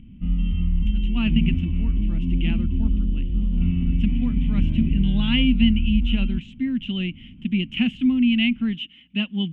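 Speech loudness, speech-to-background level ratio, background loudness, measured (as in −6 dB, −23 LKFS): −24.5 LKFS, 0.0 dB, −24.5 LKFS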